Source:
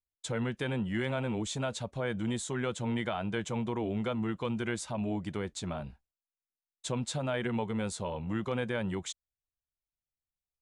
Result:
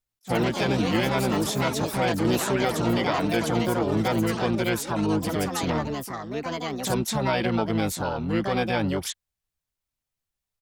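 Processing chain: echoes that change speed 0.108 s, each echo +5 st, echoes 3, each echo -6 dB; harmoniser -12 st -14 dB, +7 st -2 dB; attack slew limiter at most 520 dB/s; gain +6 dB

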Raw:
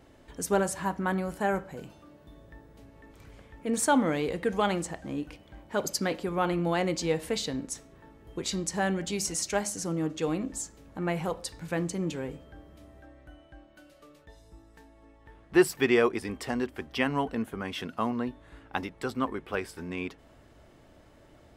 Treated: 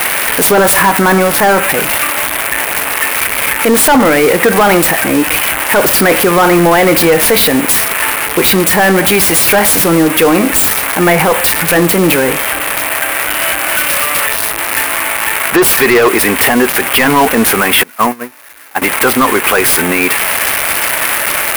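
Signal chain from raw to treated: switching spikes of -18 dBFS; 17.83–18.82 gate -25 dBFS, range -29 dB; band shelf 4900 Hz -11 dB; overdrive pedal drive 23 dB, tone 4300 Hz, clips at -10 dBFS; maximiser +17 dB; gain -1 dB

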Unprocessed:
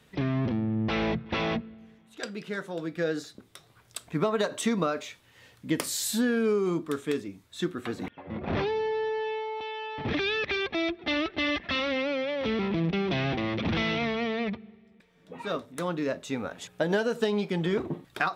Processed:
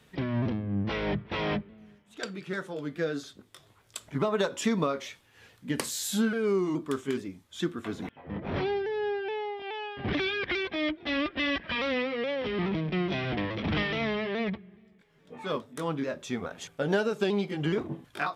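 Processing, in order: repeated pitch sweeps -2 st, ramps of 0.422 s

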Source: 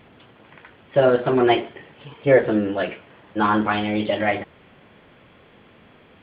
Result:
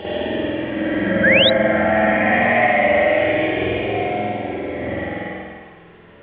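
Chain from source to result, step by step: in parallel at -2 dB: limiter -11.5 dBFS, peak gain reduction 7 dB; on the sum: Paulstretch 19×, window 0.05 s, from 4.16; spring tank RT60 1.3 s, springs 47 ms, chirp 40 ms, DRR -10 dB; painted sound rise, 1.23–1.5, 1500–4000 Hz -4 dBFS; gain -11 dB

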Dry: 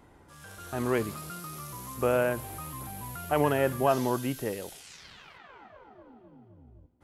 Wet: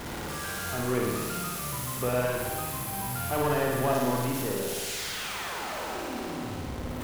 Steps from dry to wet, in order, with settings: zero-crossing step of -26.5 dBFS; flutter echo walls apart 9.6 m, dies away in 1.4 s; gain -6.5 dB

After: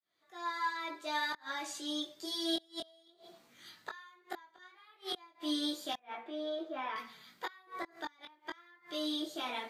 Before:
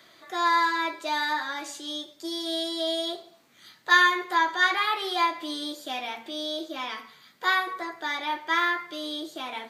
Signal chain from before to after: opening faded in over 2.03 s; 5.97–6.96 three-band isolator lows -22 dB, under 230 Hz, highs -23 dB, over 2300 Hz; flipped gate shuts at -21 dBFS, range -32 dB; chorus voices 4, 0.26 Hz, delay 20 ms, depth 3.5 ms

